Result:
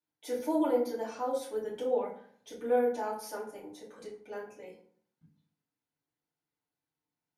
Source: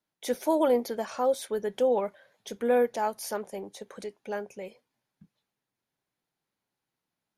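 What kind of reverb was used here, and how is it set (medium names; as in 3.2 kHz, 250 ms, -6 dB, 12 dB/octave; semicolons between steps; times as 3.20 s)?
FDN reverb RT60 0.55 s, low-frequency decay 1.3×, high-frequency decay 0.6×, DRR -7.5 dB; trim -14.5 dB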